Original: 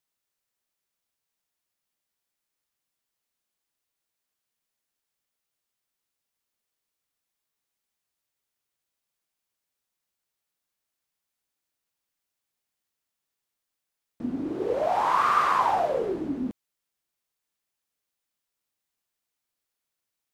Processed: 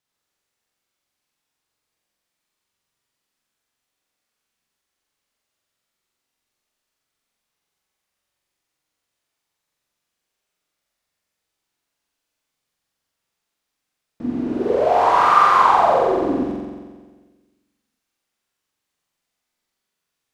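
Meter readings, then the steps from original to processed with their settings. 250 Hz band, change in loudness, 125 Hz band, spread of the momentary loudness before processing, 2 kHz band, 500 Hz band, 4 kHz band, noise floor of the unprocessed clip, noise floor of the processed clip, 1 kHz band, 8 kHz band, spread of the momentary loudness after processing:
+8.0 dB, +9.0 dB, +7.5 dB, 12 LU, +8.0 dB, +9.5 dB, +8.0 dB, -85 dBFS, -80 dBFS, +9.0 dB, no reading, 16 LU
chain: treble shelf 10 kHz -11 dB; on a send: flutter echo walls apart 7.7 m, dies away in 1.5 s; on the sum: trim +4 dB

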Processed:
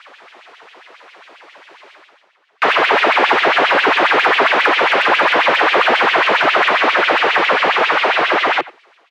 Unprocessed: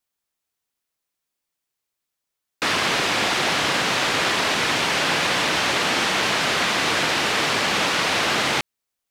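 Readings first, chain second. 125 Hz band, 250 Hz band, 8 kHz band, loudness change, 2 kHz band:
no reading, +3.5 dB, under -10 dB, +7.0 dB, +8.5 dB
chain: fade out at the end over 3.03 s; overdrive pedal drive 37 dB, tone 1.1 kHz, clips at -8 dBFS; low-pass 5.5 kHz 12 dB/octave; peaking EQ 150 Hz +3.5 dB 0.28 oct; LFO high-pass sine 7.4 Hz 350–3000 Hz; reverse; upward compressor, threshold -30 dBFS; reverse; tone controls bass +5 dB, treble -11 dB; speakerphone echo 90 ms, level -19 dB; slew-rate limiter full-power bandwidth 500 Hz; trim +4.5 dB

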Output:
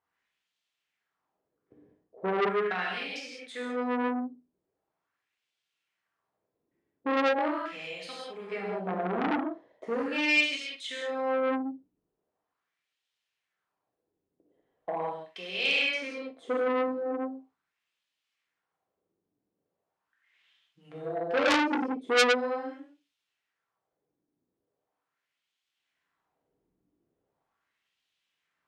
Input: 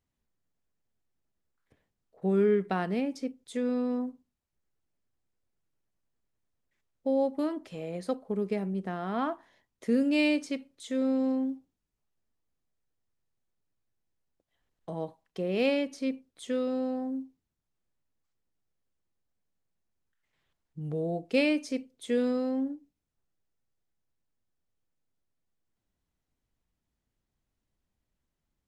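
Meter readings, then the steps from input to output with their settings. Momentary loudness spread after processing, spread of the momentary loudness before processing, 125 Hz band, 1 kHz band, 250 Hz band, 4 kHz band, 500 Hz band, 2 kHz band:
15 LU, 13 LU, -8.5 dB, +8.0 dB, -4.5 dB, +9.0 dB, +0.5 dB, +10.0 dB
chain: in parallel at -3 dB: compression, threshold -39 dBFS, peak gain reduction 17 dB; on the sum: flutter echo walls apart 8.4 m, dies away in 0.2 s; gated-style reverb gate 220 ms flat, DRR -5 dB; wah-wah 0.4 Hz 310–3200 Hz, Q 2; transformer saturation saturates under 3.5 kHz; trim +5.5 dB

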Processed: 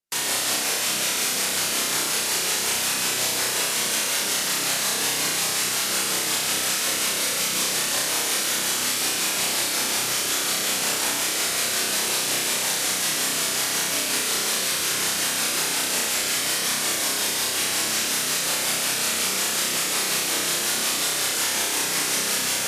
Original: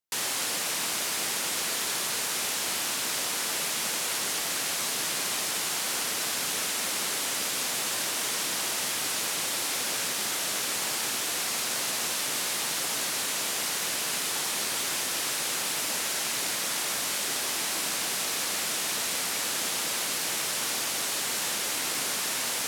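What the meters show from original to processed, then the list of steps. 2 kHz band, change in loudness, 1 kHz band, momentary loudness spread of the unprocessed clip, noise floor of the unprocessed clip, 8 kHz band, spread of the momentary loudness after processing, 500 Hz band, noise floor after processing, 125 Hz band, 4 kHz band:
+6.0 dB, +6.0 dB, +4.5 dB, 0 LU, -30 dBFS, +6.0 dB, 0 LU, +6.5 dB, -26 dBFS, +7.5 dB, +6.0 dB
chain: rotary cabinet horn 5.5 Hz; flutter echo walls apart 5.4 m, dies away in 0.99 s; trim +4.5 dB; MP3 80 kbps 32 kHz

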